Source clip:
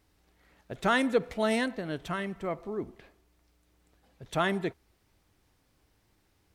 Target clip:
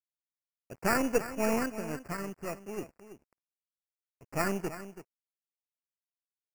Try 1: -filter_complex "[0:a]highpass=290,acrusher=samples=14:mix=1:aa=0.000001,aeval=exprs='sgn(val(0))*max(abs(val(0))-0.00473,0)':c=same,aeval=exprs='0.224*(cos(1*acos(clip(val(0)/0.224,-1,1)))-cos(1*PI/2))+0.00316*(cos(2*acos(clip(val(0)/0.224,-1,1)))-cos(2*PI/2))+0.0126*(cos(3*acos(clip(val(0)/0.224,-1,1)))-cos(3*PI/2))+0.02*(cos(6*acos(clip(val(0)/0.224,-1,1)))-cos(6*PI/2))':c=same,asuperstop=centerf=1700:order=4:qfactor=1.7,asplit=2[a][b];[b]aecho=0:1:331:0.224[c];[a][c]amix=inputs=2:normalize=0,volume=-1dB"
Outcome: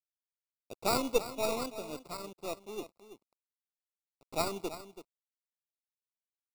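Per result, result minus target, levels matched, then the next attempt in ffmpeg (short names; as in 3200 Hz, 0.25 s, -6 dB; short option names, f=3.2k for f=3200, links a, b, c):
2000 Hz band -5.5 dB; 250 Hz band -4.0 dB
-filter_complex "[0:a]highpass=290,acrusher=samples=14:mix=1:aa=0.000001,aeval=exprs='sgn(val(0))*max(abs(val(0))-0.00473,0)':c=same,aeval=exprs='0.224*(cos(1*acos(clip(val(0)/0.224,-1,1)))-cos(1*PI/2))+0.00316*(cos(2*acos(clip(val(0)/0.224,-1,1)))-cos(2*PI/2))+0.0126*(cos(3*acos(clip(val(0)/0.224,-1,1)))-cos(3*PI/2))+0.02*(cos(6*acos(clip(val(0)/0.224,-1,1)))-cos(6*PI/2))':c=same,asuperstop=centerf=3700:order=4:qfactor=1.7,asplit=2[a][b];[b]aecho=0:1:331:0.224[c];[a][c]amix=inputs=2:normalize=0,volume=-1dB"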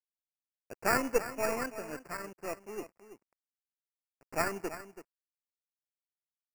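250 Hz band -5.0 dB
-filter_complex "[0:a]acrusher=samples=14:mix=1:aa=0.000001,aeval=exprs='sgn(val(0))*max(abs(val(0))-0.00473,0)':c=same,aeval=exprs='0.224*(cos(1*acos(clip(val(0)/0.224,-1,1)))-cos(1*PI/2))+0.00316*(cos(2*acos(clip(val(0)/0.224,-1,1)))-cos(2*PI/2))+0.0126*(cos(3*acos(clip(val(0)/0.224,-1,1)))-cos(3*PI/2))+0.02*(cos(6*acos(clip(val(0)/0.224,-1,1)))-cos(6*PI/2))':c=same,asuperstop=centerf=3700:order=4:qfactor=1.7,asplit=2[a][b];[b]aecho=0:1:331:0.224[c];[a][c]amix=inputs=2:normalize=0,volume=-1dB"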